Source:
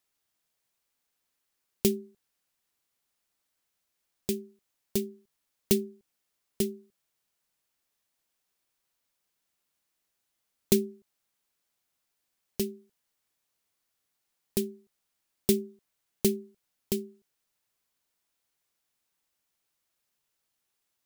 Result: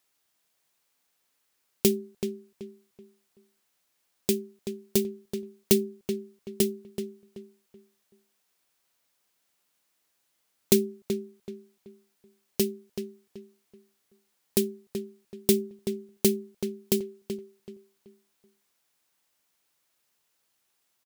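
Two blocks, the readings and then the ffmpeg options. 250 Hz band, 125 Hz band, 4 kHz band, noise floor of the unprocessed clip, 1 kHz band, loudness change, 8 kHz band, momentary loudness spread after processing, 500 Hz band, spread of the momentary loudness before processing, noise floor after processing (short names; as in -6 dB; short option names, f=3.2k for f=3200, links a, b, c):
+3.5 dB, +2.5 dB, +4.5 dB, -81 dBFS, +5.0 dB, +2.0 dB, +4.5 dB, 20 LU, +4.5 dB, 14 LU, -75 dBFS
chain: -filter_complex "[0:a]asplit=2[a][b];[b]alimiter=limit=-14dB:level=0:latency=1:release=201,volume=0dB[c];[a][c]amix=inputs=2:normalize=0,lowshelf=f=97:g=-10.5,asplit=2[d][e];[e]adelay=380,lowpass=f=2.8k:p=1,volume=-8dB,asplit=2[f][g];[g]adelay=380,lowpass=f=2.8k:p=1,volume=0.31,asplit=2[h][i];[i]adelay=380,lowpass=f=2.8k:p=1,volume=0.31,asplit=2[j][k];[k]adelay=380,lowpass=f=2.8k:p=1,volume=0.31[l];[d][f][h][j][l]amix=inputs=5:normalize=0"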